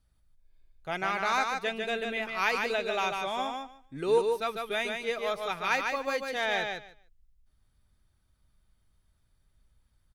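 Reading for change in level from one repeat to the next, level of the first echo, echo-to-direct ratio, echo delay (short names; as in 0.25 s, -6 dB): -16.0 dB, -4.5 dB, -4.5 dB, 0.148 s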